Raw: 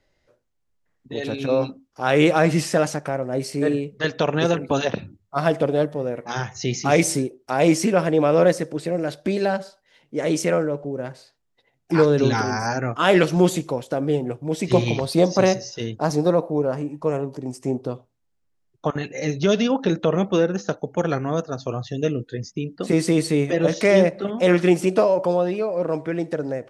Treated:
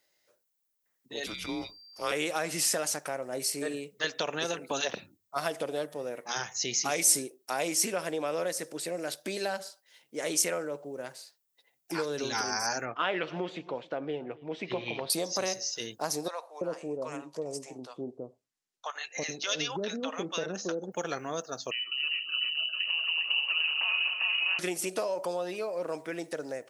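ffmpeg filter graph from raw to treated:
-filter_complex "[0:a]asettb=1/sr,asplit=3[a][b][c];[a]atrim=end=1.264[d];[b]atrim=start=1.26:end=2.12,asetpts=PTS-STARTPTS,afade=t=in:d=0.004:c=qsin,afade=t=out:st=0.856:d=0.004:c=qsin,afreqshift=-230,aeval=exprs='val(0)+0.00251*sin(2*PI*4700*n/s)':c=same[e];[c]atrim=start=2.116[f];[d][e]acrossfade=d=0.004:c1=hsin:c2=qsin[g];[g][f]acrossfade=d=0.004:c1=qsin:c2=hsin,asettb=1/sr,asplit=3[h][i][j];[h]atrim=end=12.854[k];[i]atrim=start=12.85:end=15.1,asetpts=PTS-STARTPTS,afade=t=in:d=0.004:c=qsin,afade=t=out:st=2.246:d=0.004:c=qsin,lowpass=f=3.1k:w=0.5412,lowpass=f=3.1k:w=1.3066,aecho=1:1:275:0.0631,atrim=end_sample=99225[l];[j]atrim=start=15.096[m];[k][l]acrossfade=d=0.004:c1=hsin:c2=qsin[n];[n][m]acrossfade=d=0.004:c1=qsin:c2=hsin,asettb=1/sr,asplit=3[o][p][q];[o]atrim=end=16.284[r];[p]atrim=start=16.28:end=20.92,asetpts=PTS-STARTPTS,afade=t=in:d=0.004:c=qsin,afade=t=out:st=4.636:d=0.004:c=qsin,lowpass=6.7k,acrossover=split=680[s][t];[s]adelay=330[u];[u][t]amix=inputs=2:normalize=0,atrim=end_sample=204624[v];[q]atrim=start=20.916[w];[r][v]acrossfade=d=0.004:c1=hsin:c2=qsin[x];[x][w]acrossfade=d=0.004:c1=qsin:c2=hsin,asettb=1/sr,asplit=3[y][z][aa];[y]atrim=end=21.714[ab];[z]atrim=start=21.71:end=24.59,asetpts=PTS-STARTPTS,afade=t=in:d=0.004:c=qsin,afade=t=out:st=2.876:d=0.004:c=qsin,acompressor=threshold=-27dB:ratio=4:attack=3.2:release=140:knee=1:detection=peak,aecho=1:1:81|262|402|701:0.335|0.376|0.708|0.473,atrim=end_sample=127008,lowpass=f=2.6k:t=q:w=0.5098,lowpass=f=2.6k:t=q:w=0.6013,lowpass=f=2.6k:t=q:w=0.9,lowpass=f=2.6k:t=q:w=2.563,afreqshift=-3100[ac];[aa]atrim=start=24.586[ad];[ab][ac]acrossfade=d=0.004:c1=hsin:c2=qsin[ae];[ae][ad]acrossfade=d=0.004:c1=qsin:c2=hsin,lowshelf=f=100:g=-7,acompressor=threshold=-19dB:ratio=6,aemphasis=mode=production:type=riaa,volume=-6.5dB"

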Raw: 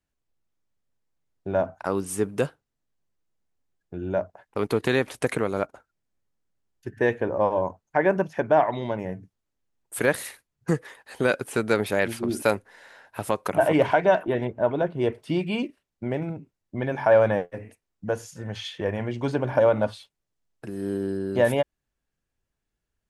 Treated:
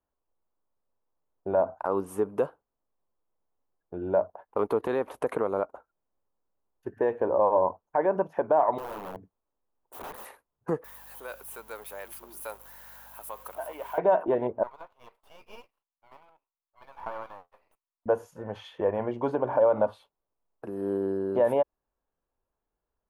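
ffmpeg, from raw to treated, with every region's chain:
-filter_complex "[0:a]asettb=1/sr,asplit=3[a][b][c];[a]atrim=end=8.784[d];[b]atrim=start=8.78:end=10.25,asetpts=PTS-STARTPTS,afade=t=in:d=0.004:c=qsin,afade=t=out:st=1.466:d=0.004:c=qsin,acompressor=threshold=-29dB:ratio=4:attack=3.2:release=140:knee=1:detection=peak,aeval=exprs='(mod(39.8*val(0)+1,2)-1)/39.8':c=same[e];[c]atrim=start=10.246[f];[d][e]acrossfade=d=0.004:c1=hsin:c2=qsin[g];[g][f]acrossfade=d=0.004:c1=qsin:c2=hsin,asettb=1/sr,asplit=3[h][i][j];[h]atrim=end=10.844[k];[i]atrim=start=10.84:end=13.98,asetpts=PTS-STARTPTS,afade=t=in:d=0.004:c=qsin,afade=t=out:st=3.136:d=0.004:c=qsin,aeval=exprs='val(0)+0.5*0.0251*sgn(val(0))':c=same,aderivative,aeval=exprs='val(0)+0.00158*(sin(2*PI*50*n/s)+sin(2*PI*2*50*n/s)/2+sin(2*PI*3*50*n/s)/3+sin(2*PI*4*50*n/s)/4+sin(2*PI*5*50*n/s)/5)':c=same[l];[j]atrim=start=13.976[m];[k][l]acrossfade=d=0.004:c1=hsin:c2=qsin[n];[n][m]acrossfade=d=0.004:c1=qsin:c2=hsin,asettb=1/sr,asplit=3[o][p][q];[o]atrim=end=14.634[r];[p]atrim=start=14.63:end=18.06,asetpts=PTS-STARTPTS,afade=t=in:d=0.004:c=qsin,afade=t=out:st=3.426:d=0.004:c=qsin,highpass=f=1.1k:w=0.5412,highpass=f=1.1k:w=1.3066,equalizer=f=1.7k:t=o:w=0.58:g=-11.5,aeval=exprs='max(val(0),0)':c=same[s];[q]atrim=start=18.056[t];[r][s]acrossfade=d=0.004:c1=hsin:c2=qsin[u];[u][t]acrossfade=d=0.004:c1=qsin:c2=hsin,equalizer=f=5.2k:t=o:w=0.62:g=-5,alimiter=limit=-16dB:level=0:latency=1:release=115,equalizer=f=125:t=o:w=1:g=-7,equalizer=f=500:t=o:w=1:g=6,equalizer=f=1k:t=o:w=1:g=10,equalizer=f=2k:t=o:w=1:g=-7,equalizer=f=4k:t=o:w=1:g=-6,equalizer=f=8k:t=o:w=1:g=-12,volume=-3.5dB"

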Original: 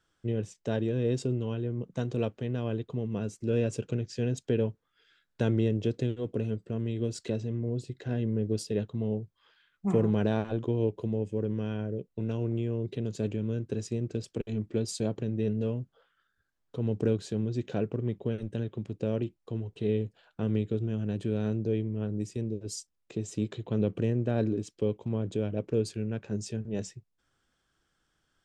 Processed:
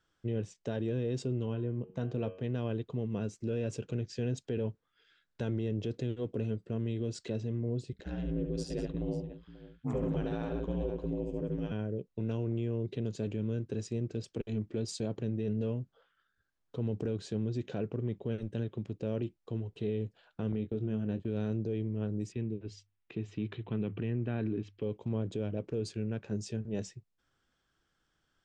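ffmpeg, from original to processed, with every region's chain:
-filter_complex "[0:a]asettb=1/sr,asplit=3[a][b][c];[a]atrim=end=1.464[d];[b]atrim=start=1.46:end=2.44,asetpts=PTS-STARTPTS,afade=t=in:d=0.004:c=qsin,afade=t=out:st=0.976:d=0.004:c=qsin,lowpass=f=2.5k:p=1,bandreject=f=92.69:t=h:w=4,bandreject=f=185.38:t=h:w=4,bandreject=f=278.07:t=h:w=4,bandreject=f=370.76:t=h:w=4,bandreject=f=463.45:t=h:w=4,bandreject=f=556.14:t=h:w=4,bandreject=f=648.83:t=h:w=4,bandreject=f=741.52:t=h:w=4,bandreject=f=834.21:t=h:w=4,bandreject=f=926.9:t=h:w=4,bandreject=f=1.01959k:t=h:w=4,bandreject=f=1.11228k:t=h:w=4,bandreject=f=1.20497k:t=h:w=4,bandreject=f=1.29766k:t=h:w=4,bandreject=f=1.39035k:t=h:w=4,bandreject=f=1.48304k:t=h:w=4,bandreject=f=1.57573k:t=h:w=4,bandreject=f=1.66842k:t=h:w=4,bandreject=f=1.76111k:t=h:w=4,bandreject=f=1.8538k:t=h:w=4,bandreject=f=1.94649k:t=h:w=4,bandreject=f=2.03918k:t=h:w=4,bandreject=f=2.13187k:t=h:w=4,bandreject=f=2.22456k:t=h:w=4,bandreject=f=2.31725k:t=h:w=4,bandreject=f=2.40994k:t=h:w=4,bandreject=f=2.50263k:t=h:w=4,bandreject=f=2.59532k:t=h:w=4,bandreject=f=2.68801k:t=h:w=4,bandreject=f=2.7807k:t=h:w=4,bandreject=f=2.87339k:t=h:w=4,bandreject=f=2.96608k:t=h:w=4,bandreject=f=3.05877k:t=h:w=4,bandreject=f=3.15146k:t=h:w=4[e];[c]atrim=start=2.436[f];[d][e]acrossfade=d=0.004:c1=hsin:c2=qsin[g];[g][f]acrossfade=d=0.004:c1=qsin:c2=hsin,asettb=1/sr,asplit=3[h][i][j];[h]atrim=end=7.924[k];[i]atrim=start=7.92:end=11.72,asetpts=PTS-STARTPTS,afade=t=in:d=0.004:c=qsin,afade=t=out:st=3.796:d=0.004:c=qsin,aeval=exprs='val(0)*sin(2*PI*59*n/s)':c=same,aecho=1:1:72|187|537:0.596|0.251|0.15,atrim=end_sample=167580[l];[j]atrim=start=11.716[m];[k][l]acrossfade=d=0.004:c1=hsin:c2=qsin[n];[n][m]acrossfade=d=0.004:c1=qsin:c2=hsin,asettb=1/sr,asplit=3[o][p][q];[o]atrim=end=20.524[r];[p]atrim=start=20.52:end=21.28,asetpts=PTS-STARTPTS,afade=t=in:d=0.004:c=qsin,afade=t=out:st=0.756:d=0.004:c=qsin,agate=range=-19dB:threshold=-37dB:ratio=16:release=100:detection=peak,lowpass=f=3k:p=1,asplit=2[s][t];[t]adelay=23,volume=-10.5dB[u];[s][u]amix=inputs=2:normalize=0,atrim=end_sample=33516[v];[q]atrim=start=21.276[w];[r][v]acrossfade=d=0.004:c1=hsin:c2=qsin[x];[x][w]acrossfade=d=0.004:c1=qsin:c2=hsin,asettb=1/sr,asplit=3[y][z][aa];[y]atrim=end=22.324[ab];[z]atrim=start=22.32:end=24.83,asetpts=PTS-STARTPTS,afade=t=in:d=0.004:c=qsin,afade=t=out:st=2.506:d=0.004:c=qsin,lowpass=f=2.6k:t=q:w=1.5,equalizer=f=550:t=o:w=0.57:g=-8,bandreject=f=50:t=h:w=6,bandreject=f=100:t=h:w=6[ac];[aa]atrim=start=24.826[ad];[ab][ac]acrossfade=d=0.004:c1=hsin:c2=qsin[ae];[ae][ad]acrossfade=d=0.004:c1=qsin:c2=hsin,lowpass=7.1k,alimiter=limit=-23dB:level=0:latency=1:release=16,volume=-2dB"

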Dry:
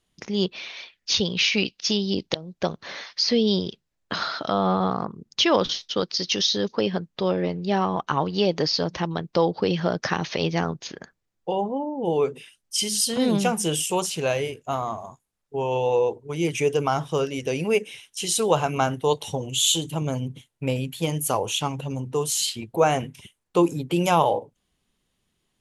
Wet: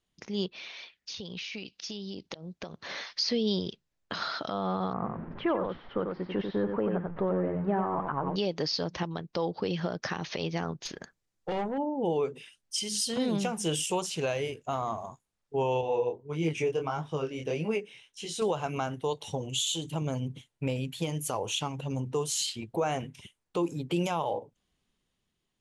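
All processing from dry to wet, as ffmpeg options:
-filter_complex "[0:a]asettb=1/sr,asplit=3[a][b][c];[a]atrim=end=0.714[d];[b]atrim=start=0.71:end=2.9,asetpts=PTS-STARTPTS,afade=t=in:d=0.004:c=qsin,afade=t=out:st=2.186:d=0.004:c=qsin,highpass=41,acompressor=threshold=-34dB:ratio=8:attack=3.2:release=140:knee=1:detection=peak[e];[c]atrim=start=2.896[f];[d][e]acrossfade=d=0.004:c1=hsin:c2=qsin[g];[g][f]acrossfade=d=0.004:c1=qsin:c2=hsin,asettb=1/sr,asplit=3[h][i][j];[h]atrim=end=4.934[k];[i]atrim=start=4.93:end=8.36,asetpts=PTS-STARTPTS,afade=t=in:d=0.004:c=qsin,afade=t=out:st=3.426:d=0.004:c=qsin,aeval=exprs='val(0)+0.5*0.0237*sgn(val(0))':c=same,lowpass=f=1.7k:w=0.5412,lowpass=f=1.7k:w=1.3066,aecho=1:1:93:0.531,atrim=end_sample=151263[l];[j]atrim=start=8.356[m];[k][l]acrossfade=d=0.004:c1=hsin:c2=qsin[n];[n][m]acrossfade=d=0.004:c1=qsin:c2=hsin,asettb=1/sr,asplit=3[o][p][q];[o]atrim=end=10.854[r];[p]atrim=start=10.85:end=11.78,asetpts=PTS-STARTPTS,afade=t=in:d=0.004:c=qsin,afade=t=out:st=0.926:d=0.004:c=qsin,highshelf=f=6.6k:g=10,aeval=exprs='(tanh(17.8*val(0)+0.3)-tanh(0.3))/17.8':c=same[s];[q]atrim=start=11.776[t];[r][s]acrossfade=d=0.004:c1=hsin:c2=qsin[u];[u][t]acrossfade=d=0.004:c1=qsin:c2=hsin,asettb=1/sr,asplit=3[v][w][x];[v]atrim=end=15.814[y];[w]atrim=start=15.81:end=18.42,asetpts=PTS-STARTPTS,afade=t=in:d=0.004:c=qsin,afade=t=out:st=2.606:d=0.004:c=qsin,flanger=delay=18.5:depth=5.9:speed=1.6,highshelf=f=4.5k:g=-9.5[z];[x]atrim=start=18.416[aa];[y][z]acrossfade=d=0.004:c1=hsin:c2=qsin[ab];[ab][aa]acrossfade=d=0.004:c1=qsin:c2=hsin,lowpass=8.7k,dynaudnorm=f=200:g=9:m=6dB,alimiter=limit=-12dB:level=0:latency=1:release=309,volume=-7.5dB"

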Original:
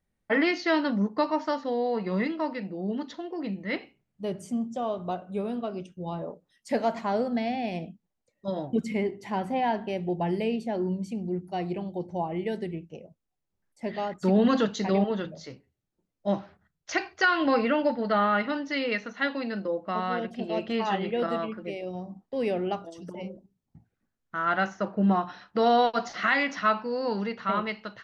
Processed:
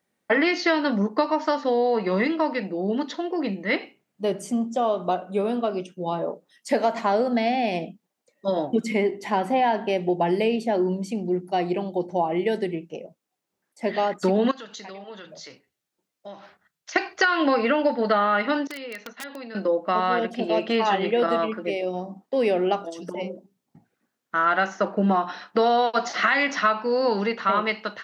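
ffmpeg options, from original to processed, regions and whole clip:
-filter_complex "[0:a]asettb=1/sr,asplit=3[a][b][c];[a]atrim=end=14.514[d];[b]atrim=start=14.51:end=16.96,asetpts=PTS-STARTPTS,afade=t=in:d=0.004:c=qsin,afade=t=out:st=2.446:d=0.004:c=qsin,equalizer=f=280:w=0.37:g=-9.5,acompressor=threshold=-46dB:ratio=4:attack=3.2:release=140:knee=1:detection=peak[e];[c]atrim=start=16.956[f];[d][e]acrossfade=d=0.004:c1=hsin:c2=qsin[g];[g][f]acrossfade=d=0.004:c1=qsin:c2=hsin,asettb=1/sr,asplit=3[h][i][j];[h]atrim=end=18.674[k];[i]atrim=start=18.67:end=19.55,asetpts=PTS-STARTPTS,afade=t=in:d=0.004:c=qsin,afade=t=out:st=0.876:d=0.004:c=qsin,agate=range=-33dB:threshold=-38dB:ratio=3:release=100:detection=peak,acompressor=threshold=-42dB:ratio=6:attack=3.2:release=140:knee=1:detection=peak,aeval=exprs='(mod(56.2*val(0)+1,2)-1)/56.2':c=same[l];[j]atrim=start=19.546[m];[k][l]acrossfade=d=0.004:c1=hsin:c2=qsin[n];[n][m]acrossfade=d=0.004:c1=qsin:c2=hsin,highpass=260,acompressor=threshold=-26dB:ratio=6,volume=9dB"

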